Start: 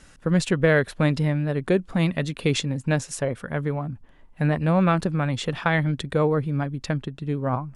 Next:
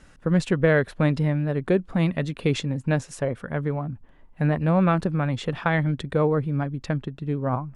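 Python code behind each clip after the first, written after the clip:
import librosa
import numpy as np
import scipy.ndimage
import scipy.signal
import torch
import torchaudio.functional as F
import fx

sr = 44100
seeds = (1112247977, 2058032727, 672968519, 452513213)

y = fx.high_shelf(x, sr, hz=3200.0, db=-8.5)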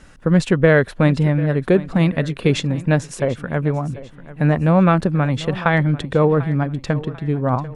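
y = fx.echo_feedback(x, sr, ms=743, feedback_pct=38, wet_db=-17.0)
y = y * 10.0 ** (6.0 / 20.0)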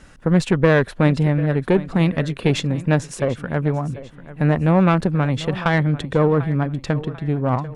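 y = fx.diode_clip(x, sr, knee_db=-10.5)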